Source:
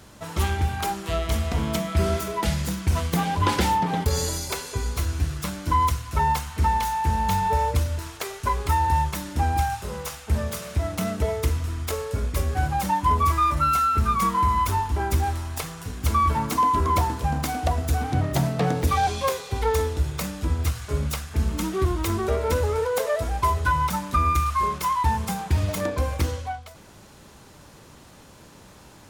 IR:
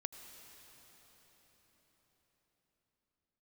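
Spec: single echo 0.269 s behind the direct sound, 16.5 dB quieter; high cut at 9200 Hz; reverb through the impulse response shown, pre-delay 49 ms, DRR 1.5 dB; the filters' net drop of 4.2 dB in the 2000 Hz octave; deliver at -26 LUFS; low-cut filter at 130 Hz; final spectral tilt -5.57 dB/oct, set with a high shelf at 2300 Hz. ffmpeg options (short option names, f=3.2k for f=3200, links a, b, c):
-filter_complex "[0:a]highpass=130,lowpass=9.2k,equalizer=f=2k:t=o:g=-3,highshelf=f=2.3k:g=-5,aecho=1:1:269:0.15,asplit=2[a][b];[1:a]atrim=start_sample=2205,adelay=49[c];[b][c]afir=irnorm=-1:irlink=0,volume=0.5dB[d];[a][d]amix=inputs=2:normalize=0,volume=-1dB"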